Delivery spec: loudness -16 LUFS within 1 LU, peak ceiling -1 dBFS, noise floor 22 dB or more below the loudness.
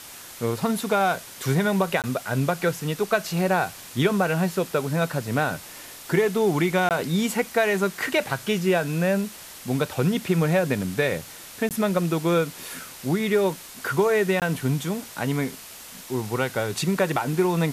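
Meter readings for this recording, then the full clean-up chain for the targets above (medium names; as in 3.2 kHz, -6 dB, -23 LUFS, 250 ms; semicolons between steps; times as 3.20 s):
dropouts 4; longest dropout 18 ms; noise floor -42 dBFS; noise floor target -47 dBFS; loudness -24.5 LUFS; peak level -8.5 dBFS; loudness target -16.0 LUFS
-> interpolate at 2.02/6.89/11.69/14.40 s, 18 ms; noise reduction 6 dB, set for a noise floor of -42 dBFS; trim +8.5 dB; peak limiter -1 dBFS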